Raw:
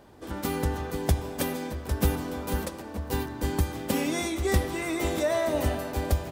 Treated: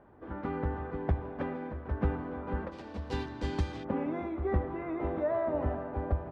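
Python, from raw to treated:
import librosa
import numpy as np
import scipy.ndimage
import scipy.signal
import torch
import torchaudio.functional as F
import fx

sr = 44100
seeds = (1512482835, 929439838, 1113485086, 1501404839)

y = fx.ladder_lowpass(x, sr, hz=fx.steps((0.0, 2100.0), (2.71, 5700.0), (3.83, 1700.0)), resonance_pct=20)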